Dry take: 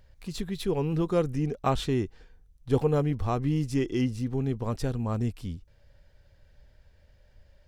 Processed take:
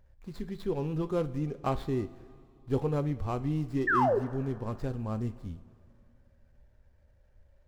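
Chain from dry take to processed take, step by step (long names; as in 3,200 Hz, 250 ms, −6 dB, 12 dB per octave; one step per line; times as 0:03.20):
running median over 15 samples
sound drawn into the spectrogram fall, 0:03.87–0:04.19, 370–1,900 Hz −21 dBFS
coupled-rooms reverb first 0.32 s, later 2.5 s, from −15 dB, DRR 9.5 dB
level −4.5 dB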